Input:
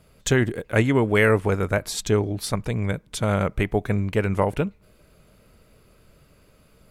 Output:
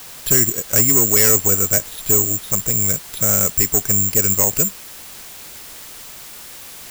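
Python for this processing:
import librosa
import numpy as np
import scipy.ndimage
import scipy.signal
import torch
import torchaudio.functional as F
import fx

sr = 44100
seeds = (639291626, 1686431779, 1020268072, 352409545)

y = (np.kron(scipy.signal.resample_poly(x, 1, 6), np.eye(6)[0]) * 6)[:len(x)]
y = fx.quant_dither(y, sr, seeds[0], bits=6, dither='triangular')
y = y * 10.0 ** (-1.0 / 20.0)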